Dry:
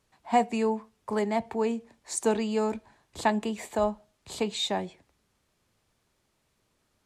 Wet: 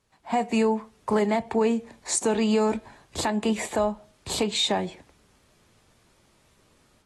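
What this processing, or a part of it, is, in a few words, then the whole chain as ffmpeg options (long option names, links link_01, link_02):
low-bitrate web radio: -af "dynaudnorm=framelen=250:gausssize=3:maxgain=10dB,alimiter=limit=-14.5dB:level=0:latency=1:release=241" -ar 32000 -c:a aac -b:a 32k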